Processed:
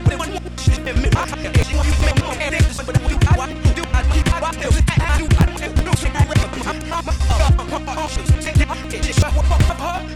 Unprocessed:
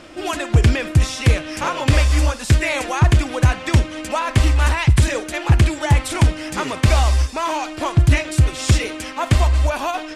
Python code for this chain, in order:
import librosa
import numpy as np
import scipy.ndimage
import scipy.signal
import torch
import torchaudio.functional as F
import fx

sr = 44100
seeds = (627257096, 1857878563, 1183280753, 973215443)

y = fx.block_reorder(x, sr, ms=96.0, group=6)
y = fx.dmg_buzz(y, sr, base_hz=60.0, harmonics=4, level_db=-30.0, tilt_db=-5, odd_only=False)
y = fx.buffer_crackle(y, sr, first_s=0.84, period_s=0.38, block=512, kind='repeat')